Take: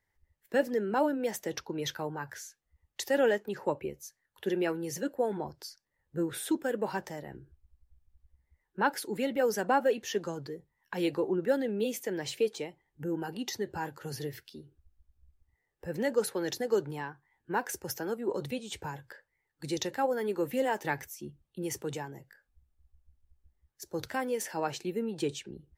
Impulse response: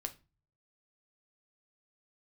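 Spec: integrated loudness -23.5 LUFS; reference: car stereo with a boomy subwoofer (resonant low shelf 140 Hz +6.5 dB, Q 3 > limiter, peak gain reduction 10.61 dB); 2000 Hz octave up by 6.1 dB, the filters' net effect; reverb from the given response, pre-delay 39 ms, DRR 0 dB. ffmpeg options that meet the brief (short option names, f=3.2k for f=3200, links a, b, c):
-filter_complex "[0:a]equalizer=f=2k:t=o:g=8,asplit=2[a][b];[1:a]atrim=start_sample=2205,adelay=39[c];[b][c]afir=irnorm=-1:irlink=0,volume=1.5dB[d];[a][d]amix=inputs=2:normalize=0,lowshelf=f=140:t=q:w=3:g=6.5,volume=8.5dB,alimiter=limit=-12.5dB:level=0:latency=1"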